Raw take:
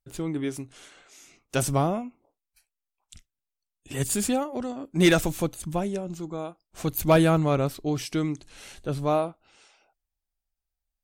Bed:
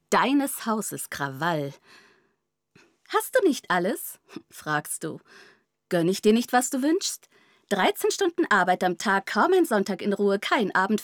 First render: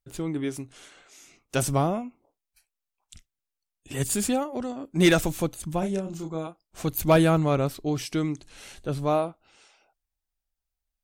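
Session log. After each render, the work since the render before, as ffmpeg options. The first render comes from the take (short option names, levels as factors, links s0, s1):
-filter_complex "[0:a]asettb=1/sr,asplit=3[s0][s1][s2];[s0]atrim=end=5.794[s3];[s1]atrim=start=5.79:end=6.47,asetpts=PTS-STARTPTS,afade=t=in:d=0.004:c=qsin,afade=t=out:st=0.676:d=0.004:c=qsin,asplit=2[s4][s5];[s5]adelay=31,volume=0.562[s6];[s4][s6]amix=inputs=2:normalize=0,atrim=end_sample=29988[s7];[s2]atrim=start=6.466[s8];[s3][s7]acrossfade=d=0.004:c1=hsin:c2=qsin[s9];[s9][s8]acrossfade=d=0.004:c1=qsin:c2=hsin"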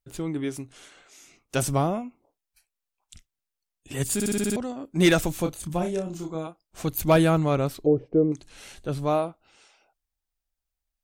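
-filter_complex "[0:a]asettb=1/sr,asplit=3[s0][s1][s2];[s0]atrim=end=5.434[s3];[s1]atrim=start=5.43:end=6.35,asetpts=PTS-STARTPTS,afade=t=in:d=0.004:c=qsin,afade=t=out:st=0.916:d=0.004:c=qsin,asplit=2[s4][s5];[s5]adelay=28,volume=0.473[s6];[s4][s6]amix=inputs=2:normalize=0,atrim=end_sample=40572[s7];[s2]atrim=start=6.346[s8];[s3][s7]acrossfade=d=0.004:c1=hsin:c2=qsin[s9];[s9][s8]acrossfade=d=0.004:c1=qsin:c2=hsin,asettb=1/sr,asplit=3[s10][s11][s12];[s10]atrim=end=7.864[s13];[s11]atrim=start=7.86:end=8.32,asetpts=PTS-STARTPTS,afade=t=in:d=0.004:c=qsin,afade=t=out:st=0.456:d=0.004:c=qsin,lowpass=f=490:t=q:w=5.1[s14];[s12]atrim=start=8.316[s15];[s13][s14]acrossfade=d=0.004:c1=hsin:c2=qsin[s16];[s16][s15]acrossfade=d=0.004:c1=qsin:c2=hsin,asplit=8[s17][s18][s19][s20][s21][s22][s23][s24];[s17]atrim=end=4.202[s25];[s18]atrim=start=4.138:end=4.202[s26];[s19]atrim=start=4.138:end=4.202[s27];[s20]atrim=start=4.138:end=4.202[s28];[s21]atrim=start=4.138:end=4.202[s29];[s22]atrim=start=4.138:end=4.202[s30];[s23]atrim=start=4.138:end=4.202[s31];[s24]atrim=start=4.558[s32];[s25][s26]acrossfade=d=0.004:c1=hsin:c2=hsin[s33];[s33][s27]acrossfade=d=0.004:c1=hsin:c2=hsin[s34];[s34][s28]acrossfade=d=0.004:c1=hsin:c2=hsin[s35];[s35][s29]acrossfade=d=0.004:c1=hsin:c2=hsin[s36];[s36][s30]acrossfade=d=0.004:c1=hsin:c2=hsin[s37];[s37][s31]acrossfade=d=0.004:c1=hsin:c2=hsin[s38];[s38][s32]acrossfade=d=0.004:c1=hsin:c2=hsin"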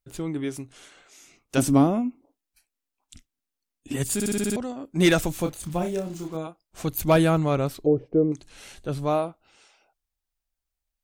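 -filter_complex "[0:a]asettb=1/sr,asplit=3[s0][s1][s2];[s0]atrim=end=1.574[s3];[s1]atrim=start=1.57:end=3.96,asetpts=PTS-STARTPTS,afade=t=in:d=0.004:c=qsin,afade=t=out:st=2.386:d=0.004:c=qsin,equalizer=f=270:t=o:w=0.5:g=14.5[s4];[s2]atrim=start=3.956[s5];[s3][s4]acrossfade=d=0.004:c1=hsin:c2=qsin[s6];[s6][s5]acrossfade=d=0.004:c1=qsin:c2=hsin,asettb=1/sr,asplit=3[s7][s8][s9];[s7]atrim=end=5.394[s10];[s8]atrim=start=5.39:end=6.37,asetpts=PTS-STARTPTS,afade=t=in:d=0.004:c=qsin,afade=t=out:st=0.976:d=0.004:c=qsin,acrusher=bits=7:mix=0:aa=0.5[s11];[s9]atrim=start=6.366[s12];[s10][s11]acrossfade=d=0.004:c1=hsin:c2=qsin[s13];[s13][s12]acrossfade=d=0.004:c1=qsin:c2=hsin"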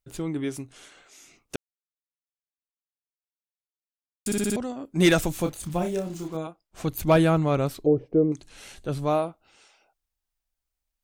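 -filter_complex "[0:a]asettb=1/sr,asplit=3[s0][s1][s2];[s0]atrim=end=6.474[s3];[s1]atrim=start=6.47:end=7.54,asetpts=PTS-STARTPTS,afade=t=in:d=0.004:c=qsin,afade=t=out:st=1.066:d=0.004:c=qsin,highshelf=f=5200:g=-5.5[s4];[s2]atrim=start=7.536[s5];[s3][s4]acrossfade=d=0.004:c1=hsin:c2=qsin[s6];[s6][s5]acrossfade=d=0.004:c1=qsin:c2=hsin,asplit=3[s7][s8][s9];[s7]atrim=end=1.56,asetpts=PTS-STARTPTS,afade=t=out:st=1.556:d=0.004:c=hsin[s10];[s8]atrim=start=1.56:end=4.26,asetpts=PTS-STARTPTS,volume=0[s11];[s9]atrim=start=4.26,asetpts=PTS-STARTPTS,afade=t=in:d=0.004:c=hsin[s12];[s10][s11][s12]concat=n=3:v=0:a=1"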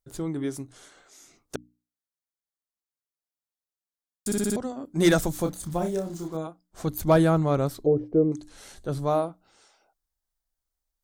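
-af "equalizer=f=2600:t=o:w=0.6:g=-10,bandreject=f=60:t=h:w=6,bandreject=f=120:t=h:w=6,bandreject=f=180:t=h:w=6,bandreject=f=240:t=h:w=6,bandreject=f=300:t=h:w=6"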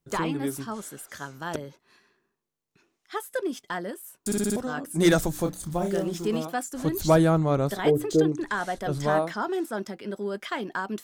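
-filter_complex "[1:a]volume=0.376[s0];[0:a][s0]amix=inputs=2:normalize=0"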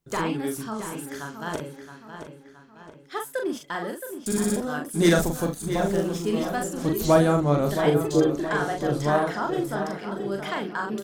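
-filter_complex "[0:a]asplit=2[s0][s1];[s1]adelay=41,volume=0.631[s2];[s0][s2]amix=inputs=2:normalize=0,asplit=2[s3][s4];[s4]adelay=670,lowpass=f=4900:p=1,volume=0.355,asplit=2[s5][s6];[s6]adelay=670,lowpass=f=4900:p=1,volume=0.48,asplit=2[s7][s8];[s8]adelay=670,lowpass=f=4900:p=1,volume=0.48,asplit=2[s9][s10];[s10]adelay=670,lowpass=f=4900:p=1,volume=0.48,asplit=2[s11][s12];[s12]adelay=670,lowpass=f=4900:p=1,volume=0.48[s13];[s3][s5][s7][s9][s11][s13]amix=inputs=6:normalize=0"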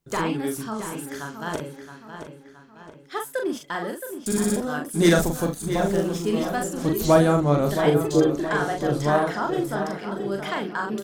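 -af "volume=1.19"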